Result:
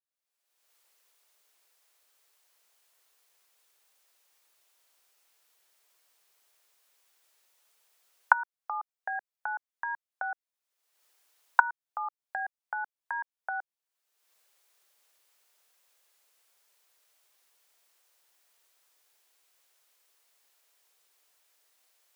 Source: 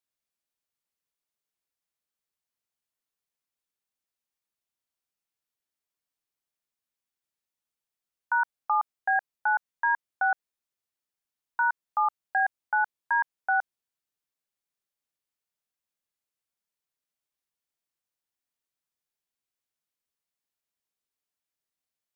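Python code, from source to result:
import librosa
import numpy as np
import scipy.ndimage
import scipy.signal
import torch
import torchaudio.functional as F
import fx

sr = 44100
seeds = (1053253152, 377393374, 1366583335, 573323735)

y = fx.recorder_agc(x, sr, target_db=-23.5, rise_db_per_s=42.0, max_gain_db=30)
y = scipy.signal.sosfilt(scipy.signal.butter(4, 410.0, 'highpass', fs=sr, output='sos'), y)
y = y * 10.0 ** (-10.0 / 20.0)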